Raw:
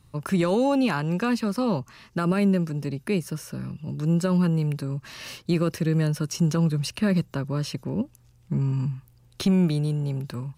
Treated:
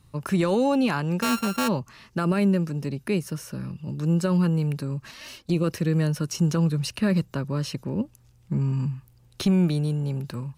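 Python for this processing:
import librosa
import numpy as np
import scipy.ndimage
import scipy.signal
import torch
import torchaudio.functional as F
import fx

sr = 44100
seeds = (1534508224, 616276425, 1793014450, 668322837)

y = fx.sample_sort(x, sr, block=32, at=(1.21, 1.67), fade=0.02)
y = fx.env_flanger(y, sr, rest_ms=5.1, full_db=-20.0, at=(5.11, 5.64))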